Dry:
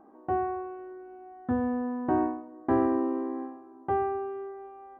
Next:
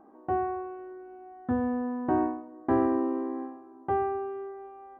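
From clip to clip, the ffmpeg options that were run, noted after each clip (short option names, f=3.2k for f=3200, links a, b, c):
-af anull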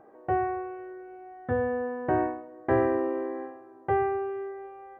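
-af "equalizer=f=125:t=o:w=1:g=9,equalizer=f=250:t=o:w=1:g=-11,equalizer=f=500:t=o:w=1:g=10,equalizer=f=1k:t=o:w=1:g=-5,equalizer=f=2k:t=o:w=1:g=11"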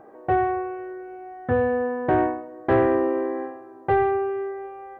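-af "asoftclip=type=tanh:threshold=-17dB,volume=6.5dB"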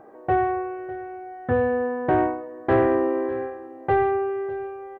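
-af "aecho=1:1:602:0.126"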